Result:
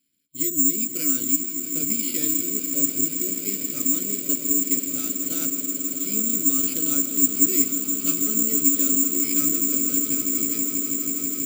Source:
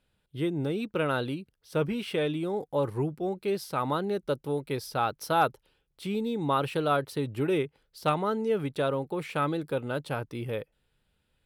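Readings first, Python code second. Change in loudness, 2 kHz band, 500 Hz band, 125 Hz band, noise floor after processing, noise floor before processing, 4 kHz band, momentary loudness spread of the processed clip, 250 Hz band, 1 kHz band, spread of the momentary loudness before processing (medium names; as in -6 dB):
+10.0 dB, -4.5 dB, -9.0 dB, -8.5 dB, -32 dBFS, -76 dBFS, +2.5 dB, 6 LU, +5.5 dB, -19.0 dB, 7 LU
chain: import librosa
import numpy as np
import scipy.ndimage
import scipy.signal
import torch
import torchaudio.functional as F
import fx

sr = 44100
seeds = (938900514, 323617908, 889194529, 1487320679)

y = fx.vowel_filter(x, sr, vowel='i')
y = fx.doubler(y, sr, ms=14.0, db=-8.0)
y = fx.echo_swell(y, sr, ms=162, loudest=8, wet_db=-13)
y = (np.kron(y[::6], np.eye(6)[0]) * 6)[:len(y)]
y = fx.echo_crushed(y, sr, ms=151, feedback_pct=35, bits=7, wet_db=-14.5)
y = y * librosa.db_to_amplitude(7.5)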